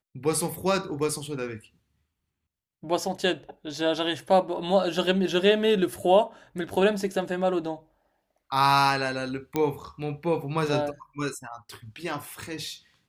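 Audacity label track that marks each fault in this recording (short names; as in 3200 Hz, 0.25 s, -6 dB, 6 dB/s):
9.560000	9.560000	pop -13 dBFS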